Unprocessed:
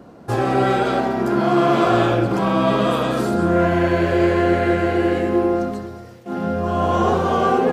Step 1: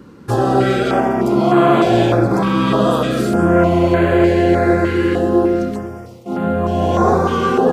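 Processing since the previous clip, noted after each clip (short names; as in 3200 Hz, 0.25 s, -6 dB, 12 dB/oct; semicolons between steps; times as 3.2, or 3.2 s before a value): stepped notch 3.3 Hz 680–5400 Hz; gain +4.5 dB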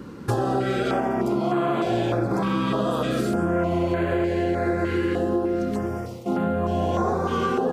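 compressor 6:1, threshold -23 dBFS, peak gain reduction 14.5 dB; gain +2 dB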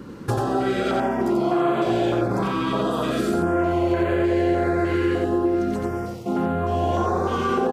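echo 89 ms -4 dB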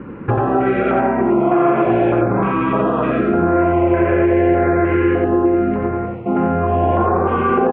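elliptic low-pass 2500 Hz, stop band 70 dB; gain +7 dB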